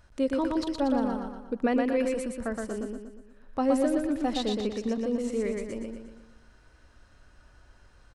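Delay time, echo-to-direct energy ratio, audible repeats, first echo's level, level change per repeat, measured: 119 ms, -2.0 dB, 6, -3.0 dB, -6.5 dB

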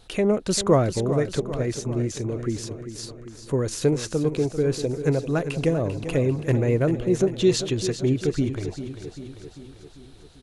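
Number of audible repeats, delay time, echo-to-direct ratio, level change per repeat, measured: 6, 394 ms, -9.0 dB, -4.5 dB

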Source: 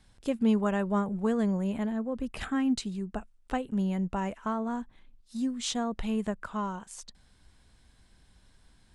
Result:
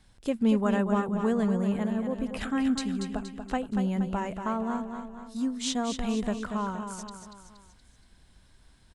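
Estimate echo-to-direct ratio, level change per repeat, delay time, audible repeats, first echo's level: -6.5 dB, -6.0 dB, 236 ms, 4, -7.5 dB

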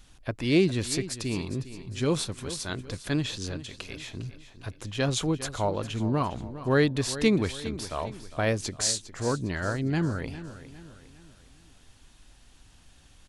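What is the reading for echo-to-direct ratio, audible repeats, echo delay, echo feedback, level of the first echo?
-13.0 dB, 3, 406 ms, 43%, -14.0 dB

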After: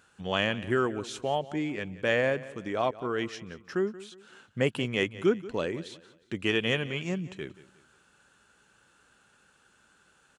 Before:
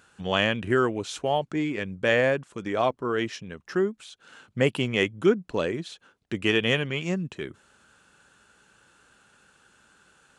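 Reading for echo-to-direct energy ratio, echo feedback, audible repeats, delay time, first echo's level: -17.0 dB, 36%, 2, 180 ms, -17.5 dB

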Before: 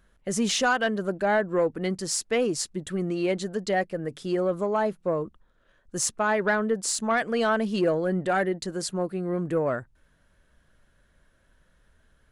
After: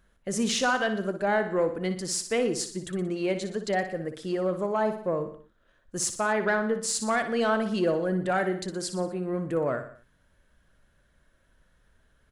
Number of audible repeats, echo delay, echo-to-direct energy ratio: 4, 60 ms, -8.5 dB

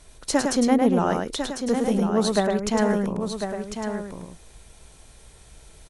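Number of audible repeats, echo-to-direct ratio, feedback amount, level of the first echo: 3, -2.0 dB, no regular repeats, -4.5 dB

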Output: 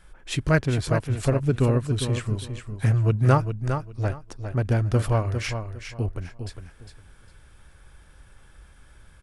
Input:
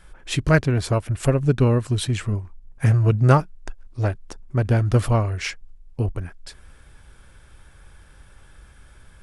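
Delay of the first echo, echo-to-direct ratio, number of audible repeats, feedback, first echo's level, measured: 405 ms, -8.0 dB, 3, 22%, -8.0 dB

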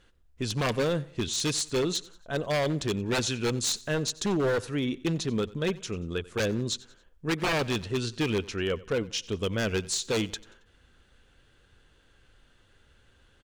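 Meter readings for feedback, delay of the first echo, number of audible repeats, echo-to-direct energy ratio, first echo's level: 41%, 91 ms, 2, -20.0 dB, -21.0 dB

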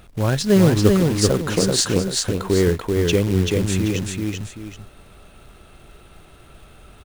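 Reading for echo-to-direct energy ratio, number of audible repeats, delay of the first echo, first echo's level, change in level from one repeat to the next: -2.5 dB, 2, 386 ms, -3.0 dB, -9.5 dB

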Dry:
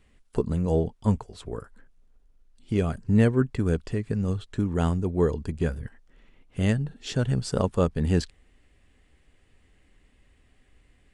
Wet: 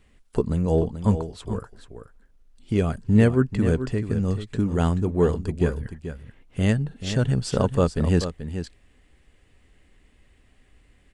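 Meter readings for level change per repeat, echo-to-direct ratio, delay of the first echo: no regular repeats, -10.0 dB, 434 ms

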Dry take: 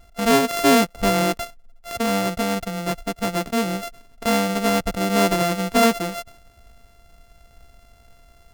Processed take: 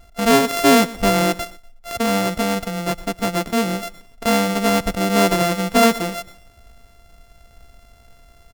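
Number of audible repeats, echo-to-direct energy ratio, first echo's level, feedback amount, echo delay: 2, -18.5 dB, -19.0 dB, 29%, 121 ms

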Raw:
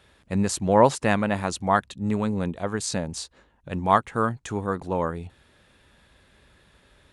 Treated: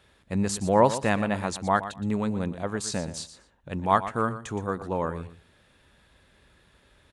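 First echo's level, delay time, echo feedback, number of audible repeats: -13.0 dB, 119 ms, 18%, 2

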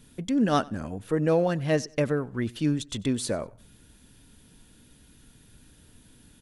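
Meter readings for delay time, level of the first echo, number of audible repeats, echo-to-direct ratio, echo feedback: 94 ms, -24.0 dB, 2, -23.5 dB, 32%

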